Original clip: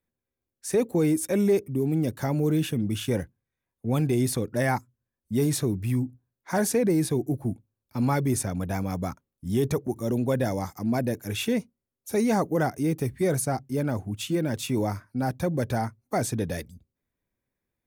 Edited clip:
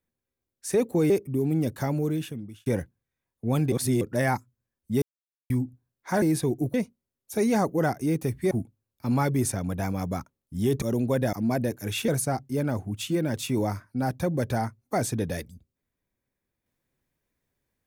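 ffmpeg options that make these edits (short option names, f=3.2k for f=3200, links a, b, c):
-filter_complex "[0:a]asplit=13[a][b][c][d][e][f][g][h][i][j][k][l][m];[a]atrim=end=1.102[n];[b]atrim=start=1.508:end=3.07,asetpts=PTS-STARTPTS,afade=t=out:st=0.722:d=0.84[o];[c]atrim=start=3.07:end=4.132,asetpts=PTS-STARTPTS,afade=t=in:d=0.004:c=hsin[p];[d]atrim=start=4.128:end=4.422,asetpts=PTS-STARTPTS,areverse[q];[e]atrim=start=4.418:end=5.43,asetpts=PTS-STARTPTS,afade=t=out:st=1.008:d=0.004:c=hsin[r];[f]atrim=start=5.43:end=5.91,asetpts=PTS-STARTPTS,volume=0[s];[g]atrim=start=5.91:end=6.632,asetpts=PTS-STARTPTS,afade=t=in:d=0.004:c=hsin[t];[h]atrim=start=6.898:end=7.422[u];[i]atrim=start=11.508:end=13.282[v];[j]atrim=start=7.418:end=9.732[w];[k]atrim=start=9.998:end=10.512[x];[l]atrim=start=10.758:end=11.512[y];[m]atrim=start=13.278[z];[o][p]concat=n=2:v=0:a=1[aa];[n][aa]acrossfade=d=0.004:c1=hsin:c2=hsin[ab];[ab][q]acrossfade=d=0.004:c1=hsin:c2=hsin[ac];[r][s][t]concat=n=3:v=0:a=1[ad];[ac][ad]acrossfade=d=0.004:c1=hsin:c2=hsin[ae];[ae][u]acrossfade=d=0.004:c1=hsin:c2=hsin[af];[af][v]acrossfade=d=0.004:c1=hsin:c2=hsin[ag];[ag][w]acrossfade=d=0.004:c1=hsin:c2=hsin[ah];[ah][x]acrossfade=d=0.004:c1=hsin:c2=hsin[ai];[ai][y]acrossfade=d=0.004:c1=hsin:c2=hsin[aj];[aj][z]acrossfade=d=0.004:c1=hsin:c2=hsin"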